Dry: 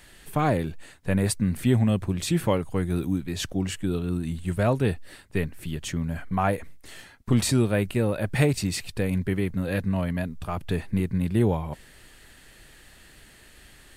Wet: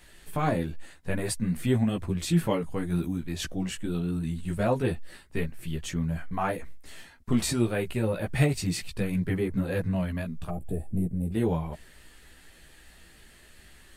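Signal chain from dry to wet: chorus voices 6, 0.87 Hz, delay 15 ms, depth 3.3 ms; spectral gain 10.5–11.33, 820–7100 Hz -21 dB

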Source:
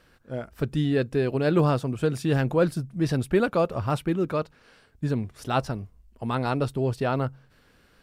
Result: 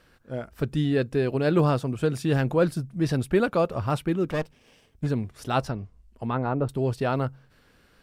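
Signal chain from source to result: 4.3–5.07 minimum comb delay 0.36 ms; 5.69–6.69 treble ducked by the level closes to 1200 Hz, closed at -21 dBFS

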